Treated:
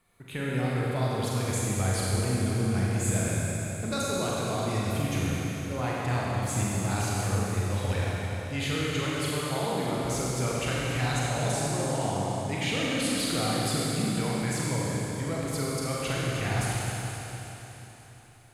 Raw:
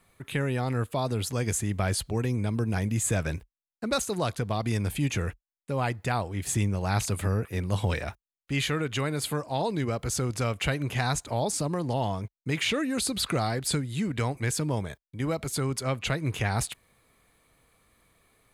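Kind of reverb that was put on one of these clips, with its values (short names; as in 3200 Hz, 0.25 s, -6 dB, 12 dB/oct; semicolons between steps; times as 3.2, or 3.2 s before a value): Schroeder reverb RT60 3.9 s, combs from 32 ms, DRR -6 dB; gain -6.5 dB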